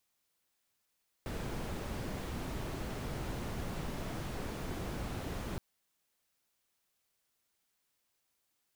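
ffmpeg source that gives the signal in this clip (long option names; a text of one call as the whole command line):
ffmpeg -f lavfi -i "anoisesrc=color=brown:amplitude=0.0556:duration=4.32:sample_rate=44100:seed=1" out.wav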